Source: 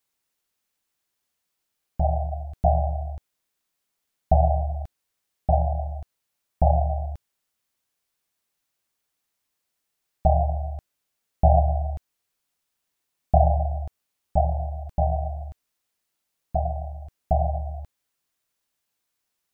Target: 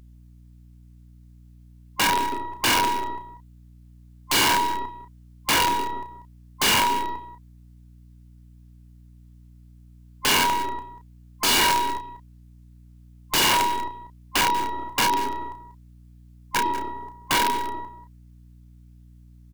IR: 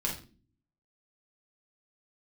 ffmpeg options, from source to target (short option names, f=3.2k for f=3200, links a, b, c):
-filter_complex "[0:a]afftfilt=real='real(if(between(b,1,1008),(2*floor((b-1)/48)+1)*48-b,b),0)':imag='imag(if(between(b,1,1008),(2*floor((b-1)/48)+1)*48-b,b),0)*if(between(b,1,1008),-1,1)':win_size=2048:overlap=0.75,highpass=85,acrossover=split=210|460[a][b][c];[a]acrusher=bits=3:mode=log:mix=0:aa=0.000001[d];[b]acompressor=threshold=-36dB:ratio=6[e];[c]aeval=exprs='0.398*(cos(1*acos(clip(val(0)/0.398,-1,1)))-cos(1*PI/2))+0.0282*(cos(5*acos(clip(val(0)/0.398,-1,1)))-cos(5*PI/2))+0.00708*(cos(6*acos(clip(val(0)/0.398,-1,1)))-cos(6*PI/2))':c=same[f];[d][e][f]amix=inputs=3:normalize=0,aeval=exprs='val(0)+0.00355*(sin(2*PI*60*n/s)+sin(2*PI*2*60*n/s)/2+sin(2*PI*3*60*n/s)/3+sin(2*PI*4*60*n/s)/4+sin(2*PI*5*60*n/s)/5)':c=same,aeval=exprs='(mod(6.31*val(0)+1,2)-1)/6.31':c=same,aeval=exprs='0.158*(cos(1*acos(clip(val(0)/0.158,-1,1)))-cos(1*PI/2))+0.0126*(cos(6*acos(clip(val(0)/0.158,-1,1)))-cos(6*PI/2))':c=same,asplit=2[g][h];[h]adelay=32,volume=-8dB[i];[g][i]amix=inputs=2:normalize=0,asplit=2[j][k];[k]aecho=0:1:190:0.178[l];[j][l]amix=inputs=2:normalize=0"